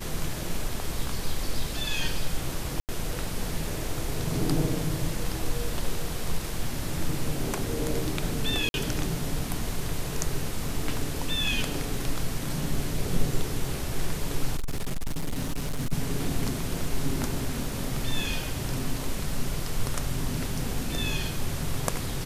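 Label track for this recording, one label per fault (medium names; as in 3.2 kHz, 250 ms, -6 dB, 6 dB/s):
2.800000	2.890000	dropout 88 ms
8.690000	8.740000	dropout 51 ms
14.570000	15.930000	clipped -24.5 dBFS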